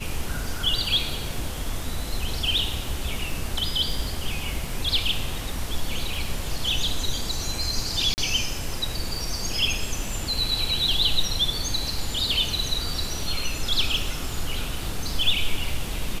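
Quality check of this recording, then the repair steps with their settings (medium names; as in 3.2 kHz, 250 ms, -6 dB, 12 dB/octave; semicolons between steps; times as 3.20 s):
crackle 23 per s -32 dBFS
8.14–8.18 s: dropout 39 ms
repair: de-click; interpolate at 8.14 s, 39 ms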